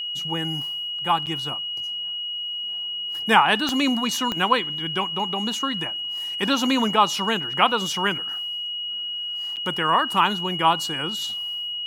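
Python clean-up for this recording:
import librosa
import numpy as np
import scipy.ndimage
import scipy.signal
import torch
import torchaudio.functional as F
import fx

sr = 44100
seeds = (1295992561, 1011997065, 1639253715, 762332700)

y = fx.fix_declick_ar(x, sr, threshold=10.0)
y = fx.notch(y, sr, hz=2900.0, q=30.0)
y = fx.fix_interpolate(y, sr, at_s=(1.26, 9.56), length_ms=8.0)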